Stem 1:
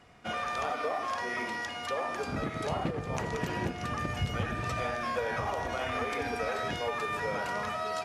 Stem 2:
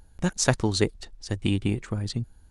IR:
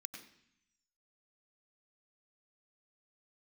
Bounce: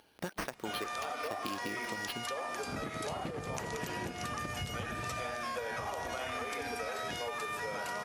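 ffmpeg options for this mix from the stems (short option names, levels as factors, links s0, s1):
-filter_complex "[0:a]equalizer=f=650:w=0.32:g=4,crystalizer=i=3.5:c=0,adelay=400,volume=0.794[s0];[1:a]highpass=340,acompressor=threshold=0.0355:ratio=6,acrusher=samples=6:mix=1:aa=0.000001,volume=1.33[s1];[s0][s1]amix=inputs=2:normalize=0,acompressor=threshold=0.0158:ratio=4"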